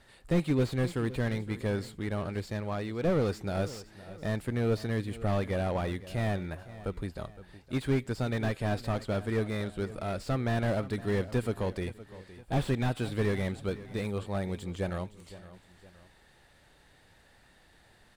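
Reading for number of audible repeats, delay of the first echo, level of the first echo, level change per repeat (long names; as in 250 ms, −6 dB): 2, 514 ms, −16.5 dB, −7.0 dB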